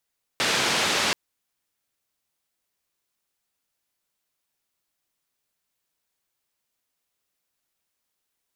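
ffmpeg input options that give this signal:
-f lavfi -i "anoisesrc=c=white:d=0.73:r=44100:seed=1,highpass=f=130,lowpass=f=4500,volume=-12dB"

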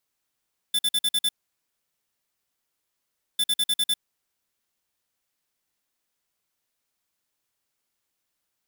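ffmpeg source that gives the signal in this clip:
-f lavfi -i "aevalsrc='0.0794*(2*lt(mod(3520*t,1),0.5)-1)*clip(min(mod(mod(t,2.65),0.1),0.05-mod(mod(t,2.65),0.1))/0.005,0,1)*lt(mod(t,2.65),0.6)':d=5.3:s=44100"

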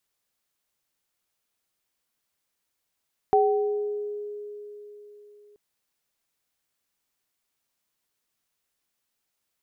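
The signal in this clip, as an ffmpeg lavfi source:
-f lavfi -i "aevalsrc='0.126*pow(10,-3*t/3.93)*sin(2*PI*415*t)+0.15*pow(10,-3*t/0.96)*sin(2*PI*765*t)':d=2.23:s=44100"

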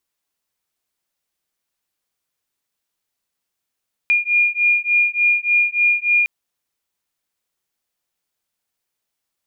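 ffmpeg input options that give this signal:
-f lavfi -i "aevalsrc='0.141*(sin(2*PI*2420*t)+sin(2*PI*2423.4*t))':d=2.16:s=44100"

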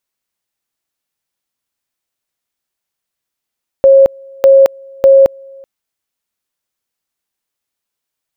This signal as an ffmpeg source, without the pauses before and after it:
-f lavfi -i "aevalsrc='pow(10,(-2-29.5*gte(mod(t,0.6),0.22))/20)*sin(2*PI*543*t)':d=1.8:s=44100"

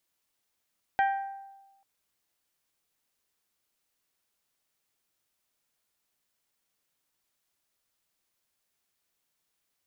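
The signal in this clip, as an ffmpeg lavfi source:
-f lavfi -i "aevalsrc='0.0944*pow(10,-3*t/1.13)*sin(2*PI*786*t)+0.0447*pow(10,-3*t/0.696)*sin(2*PI*1572*t)+0.0211*pow(10,-3*t/0.612)*sin(2*PI*1886.4*t)+0.01*pow(10,-3*t/0.524)*sin(2*PI*2358*t)+0.00473*pow(10,-3*t/0.428)*sin(2*PI*3144*t)':d=0.84:s=44100"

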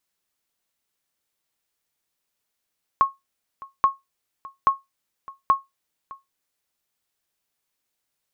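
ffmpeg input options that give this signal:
-f lavfi -i "aevalsrc='0.376*(sin(2*PI*1090*mod(t,0.83))*exp(-6.91*mod(t,0.83)/0.18)+0.0841*sin(2*PI*1090*max(mod(t,0.83)-0.61,0))*exp(-6.91*max(mod(t,0.83)-0.61,0)/0.18))':d=3.32:s=44100"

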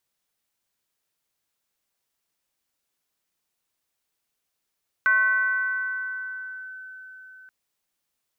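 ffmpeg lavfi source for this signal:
-f lavfi -i "aevalsrc='0.168*pow(10,-3*t/4.82)*sin(2*PI*1520*t+0.55*clip(1-t/1.7,0,1)*sin(2*PI*0.29*1520*t))':d=2.43:s=44100"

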